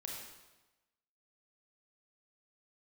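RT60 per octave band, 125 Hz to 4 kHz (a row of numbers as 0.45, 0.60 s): 1.1, 1.1, 1.1, 1.1, 1.0, 0.95 s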